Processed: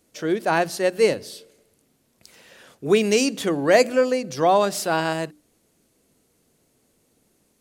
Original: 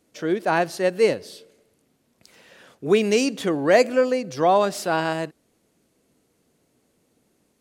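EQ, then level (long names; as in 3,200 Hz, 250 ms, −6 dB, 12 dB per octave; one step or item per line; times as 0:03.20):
low-shelf EQ 67 Hz +8 dB
high-shelf EQ 5,000 Hz +6.5 dB
mains-hum notches 60/120/180/240/300 Hz
0.0 dB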